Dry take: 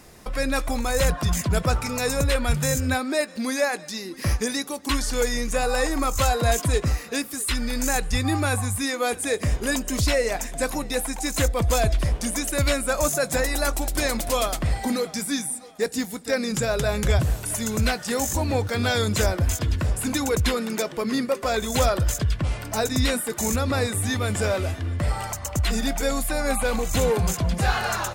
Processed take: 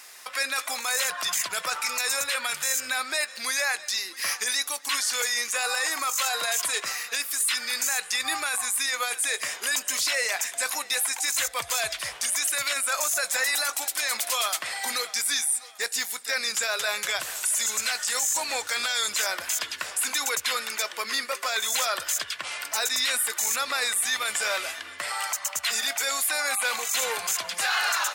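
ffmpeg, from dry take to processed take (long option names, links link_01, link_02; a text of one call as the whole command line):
ffmpeg -i in.wav -filter_complex "[0:a]asettb=1/sr,asplit=3[link_01][link_02][link_03];[link_01]atrim=end=10.934[link_04];[link_02]atrim=start=10.93:end=12.62,asetpts=PTS-STARTPTS,afade=type=in:duration=0.004:curve=qsin,afade=type=out:start_time=1.686:duration=0.004:curve=qsin,lowshelf=frequency=160:width_type=q:width=1.5:gain=9[link_05];[link_03]atrim=start=12.616[link_06];[link_04][link_05]acrossfade=duration=0.004:curve1=hsin:curve2=qsin[link_07];[link_07][link_06]acrossfade=duration=0.004:curve1=qsin:curve2=hsin,asettb=1/sr,asplit=3[link_08][link_09][link_10];[link_08]atrim=end=17.354[link_11];[link_09]atrim=start=17.35:end=19.11,asetpts=PTS-STARTPTS,afade=type=in:duration=0.004:curve=qsin,afade=type=out:start_time=1.756:duration=0.004:curve=qsin,equalizer=frequency=7500:width_type=o:width=0.65:gain=6.5[link_12];[link_10]atrim=start=19.106[link_13];[link_11][link_12]acrossfade=duration=0.004:curve1=hsin:curve2=qsin[link_14];[link_14][link_13]acrossfade=duration=0.004:curve1=qsin:curve2=hsin,highpass=1400,alimiter=limit=-23dB:level=0:latency=1:release=11,acontrast=36,volume=1.5dB" out.wav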